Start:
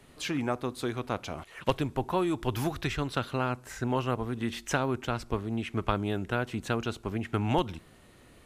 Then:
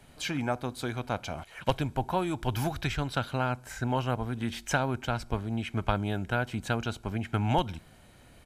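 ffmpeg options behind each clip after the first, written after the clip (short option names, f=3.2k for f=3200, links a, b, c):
-af "aecho=1:1:1.3:0.41"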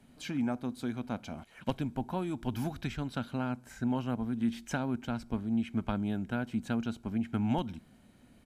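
-af "equalizer=f=230:t=o:w=0.82:g=13.5,volume=-9dB"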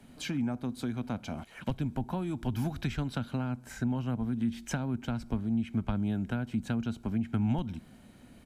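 -filter_complex "[0:a]acrossover=split=180[a][b];[b]acompressor=threshold=-40dB:ratio=5[c];[a][c]amix=inputs=2:normalize=0,volume=5.5dB"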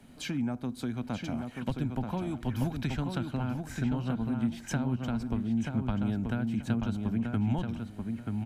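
-filter_complex "[0:a]asplit=2[a][b];[b]adelay=933,lowpass=f=3k:p=1,volume=-4.5dB,asplit=2[c][d];[d]adelay=933,lowpass=f=3k:p=1,volume=0.24,asplit=2[e][f];[f]adelay=933,lowpass=f=3k:p=1,volume=0.24[g];[a][c][e][g]amix=inputs=4:normalize=0"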